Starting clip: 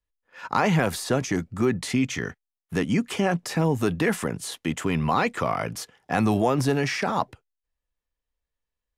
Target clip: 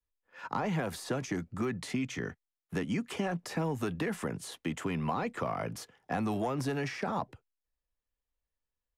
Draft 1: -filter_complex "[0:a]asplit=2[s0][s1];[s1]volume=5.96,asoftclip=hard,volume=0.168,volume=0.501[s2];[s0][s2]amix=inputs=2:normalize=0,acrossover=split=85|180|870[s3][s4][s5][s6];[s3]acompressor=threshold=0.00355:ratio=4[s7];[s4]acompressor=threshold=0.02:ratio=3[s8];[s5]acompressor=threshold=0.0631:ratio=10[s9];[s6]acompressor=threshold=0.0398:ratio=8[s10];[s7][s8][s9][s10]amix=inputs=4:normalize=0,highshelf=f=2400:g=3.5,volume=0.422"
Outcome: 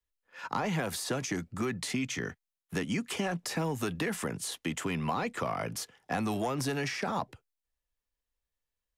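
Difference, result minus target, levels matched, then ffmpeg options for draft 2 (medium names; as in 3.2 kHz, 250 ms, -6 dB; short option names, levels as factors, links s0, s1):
4 kHz band +5.0 dB
-filter_complex "[0:a]asplit=2[s0][s1];[s1]volume=5.96,asoftclip=hard,volume=0.168,volume=0.501[s2];[s0][s2]amix=inputs=2:normalize=0,acrossover=split=85|180|870[s3][s4][s5][s6];[s3]acompressor=threshold=0.00355:ratio=4[s7];[s4]acompressor=threshold=0.02:ratio=3[s8];[s5]acompressor=threshold=0.0631:ratio=10[s9];[s6]acompressor=threshold=0.0398:ratio=8[s10];[s7][s8][s9][s10]amix=inputs=4:normalize=0,highshelf=f=2400:g=-5,volume=0.422"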